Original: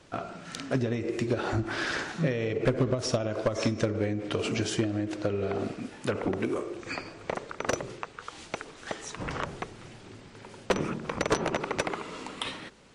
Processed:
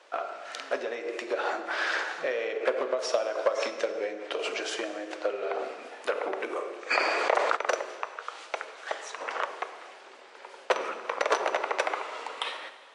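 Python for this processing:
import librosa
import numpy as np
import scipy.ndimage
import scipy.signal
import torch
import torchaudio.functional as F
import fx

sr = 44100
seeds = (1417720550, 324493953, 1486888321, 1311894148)

y = scipy.signal.sosfilt(scipy.signal.butter(4, 500.0, 'highpass', fs=sr, output='sos'), x)
y = fx.high_shelf(y, sr, hz=4900.0, db=-11.5)
y = fx.rev_plate(y, sr, seeds[0], rt60_s=1.7, hf_ratio=0.85, predelay_ms=0, drr_db=9.0)
y = fx.dynamic_eq(y, sr, hz=1200.0, q=1.6, threshold_db=-48.0, ratio=4.0, max_db=-5, at=(3.8, 4.46))
y = fx.env_flatten(y, sr, amount_pct=70, at=(6.9, 7.55), fade=0.02)
y = y * librosa.db_to_amplitude(4.0)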